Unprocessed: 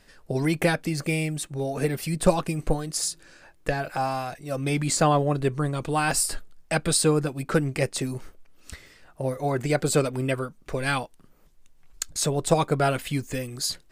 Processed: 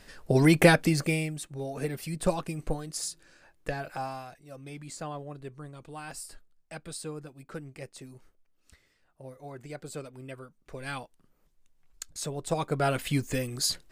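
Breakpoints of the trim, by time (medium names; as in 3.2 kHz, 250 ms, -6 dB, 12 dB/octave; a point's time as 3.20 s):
0.85 s +4 dB
1.36 s -7 dB
3.93 s -7 dB
4.64 s -17.5 dB
10.19 s -17.5 dB
11.03 s -10 dB
12.45 s -10 dB
13.11 s 0 dB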